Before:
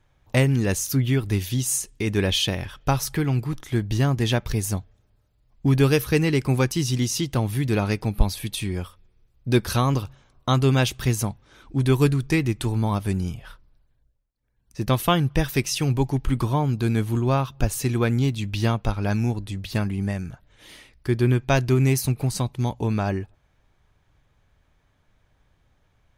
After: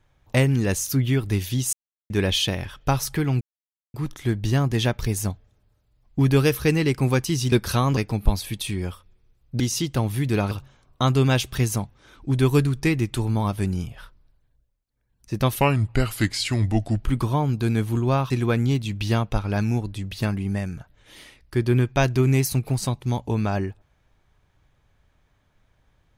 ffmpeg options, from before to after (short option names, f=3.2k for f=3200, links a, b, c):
-filter_complex "[0:a]asplit=11[a][b][c][d][e][f][g][h][i][j][k];[a]atrim=end=1.73,asetpts=PTS-STARTPTS,afade=t=out:st=1.726:d=0.004:c=hsin[l];[b]atrim=start=1.73:end=2.1,asetpts=PTS-STARTPTS,volume=0[m];[c]atrim=start=2.1:end=3.41,asetpts=PTS-STARTPTS,afade=t=in:d=0.004:c=hsin,afade=t=out:st=1.306:d=0.004:c=hsin,apad=pad_dur=0.53[n];[d]atrim=start=3.41:end=6.992,asetpts=PTS-STARTPTS,afade=t=in:d=0.004:c=hsin[o];[e]atrim=start=9.528:end=9.982[p];[f]atrim=start=7.898:end=9.532[q];[g]atrim=start=6.988:end=7.902[r];[h]atrim=start=9.978:end=15.074[s];[i]atrim=start=15.07:end=16.23,asetpts=PTS-STARTPTS,asetrate=35721,aresample=44100[t];[j]atrim=start=16.226:end=17.502[u];[k]atrim=start=17.828[v];[l][m][n][o]concat=n=4:v=0:a=1[w];[w][p]acrossfade=d=0.004:c1=hsin:c2=hsin[x];[x][q]acrossfade=d=0.004:c1=hsin:c2=hsin[y];[y][r]acrossfade=d=0.004:c1=hsin:c2=hsin[z];[z][s]acrossfade=d=0.004:c1=hsin:c2=hsin[aa];[aa][t]acrossfade=d=0.004:c1=hsin:c2=hsin[ab];[ab][u]acrossfade=d=0.004:c1=hsin:c2=hsin[ac];[ac][v]acrossfade=d=0.004:c1=hsin:c2=hsin"